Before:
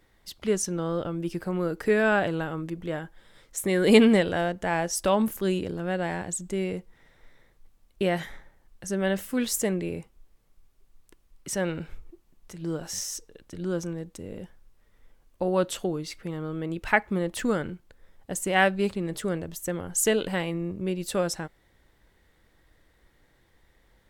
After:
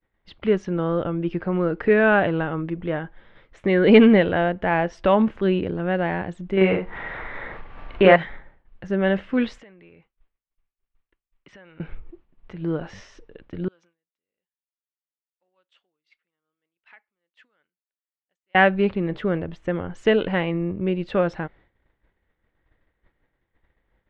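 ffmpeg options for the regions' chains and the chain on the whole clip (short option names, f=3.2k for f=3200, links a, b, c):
-filter_complex "[0:a]asettb=1/sr,asplit=3[a][b][c];[a]atrim=end=6.574[d];[b]atrim=start=6.57:end=8.16,asetpts=PTS-STARTPTS,afade=t=in:d=0.004:c=qsin,afade=t=out:st=1.586:d=0.004:c=qsin,equalizer=f=1.2k:w=0.41:g=12,acompressor=mode=upward:threshold=-27dB:ratio=2.5:attack=3.2:release=140:knee=2.83:detection=peak,asplit=2[e][f];[f]adelay=42,volume=-3.5dB[g];[e][g]amix=inputs=2:normalize=0,atrim=end_sample=70119[h];[c]atrim=start=8.156[i];[d][h]acrossfade=d=0.004:c1=hsin:c2=qsin[j];[j][i]acrossfade=d=0.004:c1=qsin:c2=hsin,asettb=1/sr,asplit=3[k][l][m];[k]atrim=end=9.584[n];[l]atrim=start=9.58:end=11.8,asetpts=PTS-STARTPTS,afade=t=in:d=0.004:c=qsin,afade=t=out:st=2.216:d=0.004:c=qsin,lowpass=f=1.8k:p=1,acompressor=threshold=-42dB:ratio=16:attack=3.2:release=140:knee=1:detection=peak,tiltshelf=f=1.2k:g=-9.5[o];[m]atrim=start=11.796[p];[n][o]acrossfade=d=0.004:c1=hsin:c2=qsin[q];[q][p]acrossfade=d=0.004:c1=qsin:c2=hsin,asettb=1/sr,asplit=3[r][s][t];[r]atrim=end=13.684[u];[s]atrim=start=13.68:end=18.55,asetpts=PTS-STARTPTS,afade=t=in:d=0.004:c=qsin,afade=t=out:st=4.866:d=0.004:c=qsin,acompressor=threshold=-38dB:ratio=5:attack=3.2:release=140:knee=1:detection=peak,aderivative[v];[t]atrim=start=18.546[w];[u][v]acrossfade=d=0.004:c1=hsin:c2=qsin[x];[x][w]acrossfade=d=0.004:c1=qsin:c2=hsin,acontrast=41,lowpass=f=2.9k:w=0.5412,lowpass=f=2.9k:w=1.3066,agate=range=-33dB:threshold=-46dB:ratio=3:detection=peak"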